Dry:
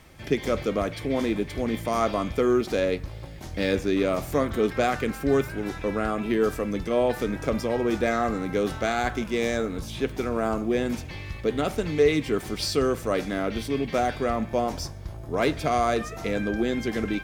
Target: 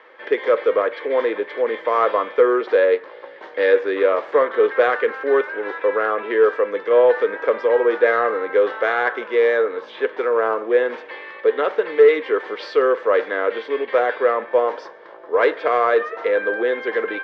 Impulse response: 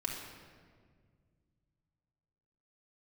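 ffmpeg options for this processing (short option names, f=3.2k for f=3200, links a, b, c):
-af "highpass=f=440:w=0.5412,highpass=f=440:w=1.3066,equalizer=f=480:t=q:w=4:g=9,equalizer=f=710:t=q:w=4:g=-7,equalizer=f=1k:t=q:w=4:g=5,equalizer=f=1.7k:t=q:w=4:g=6,equalizer=f=2.5k:t=q:w=4:g=-7,lowpass=f=2.9k:w=0.5412,lowpass=f=2.9k:w=1.3066,acontrast=88"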